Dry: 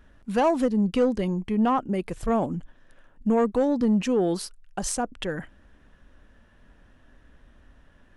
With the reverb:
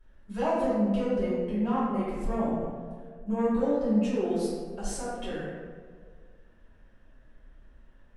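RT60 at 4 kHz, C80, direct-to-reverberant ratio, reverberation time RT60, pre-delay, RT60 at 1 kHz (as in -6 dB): 0.85 s, 0.5 dB, -11.5 dB, 1.8 s, 3 ms, 1.5 s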